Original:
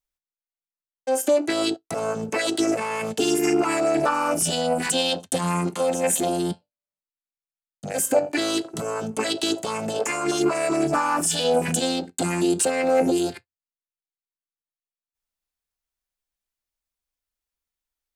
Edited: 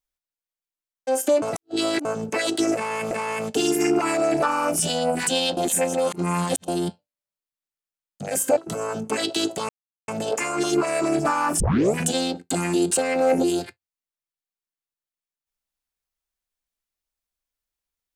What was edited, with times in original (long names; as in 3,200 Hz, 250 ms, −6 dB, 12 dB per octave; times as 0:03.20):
0:01.42–0:02.05: reverse
0:02.74–0:03.11: repeat, 2 plays
0:05.20–0:06.31: reverse
0:08.20–0:08.64: remove
0:09.76: splice in silence 0.39 s
0:11.28: tape start 0.35 s